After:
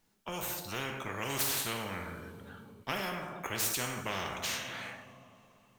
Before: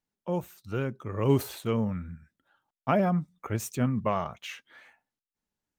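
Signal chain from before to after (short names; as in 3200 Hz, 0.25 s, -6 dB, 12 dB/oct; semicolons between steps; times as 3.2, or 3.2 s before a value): two-slope reverb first 0.65 s, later 3.2 s, from -26 dB, DRR 5 dB; spectral compressor 4:1; gain -5 dB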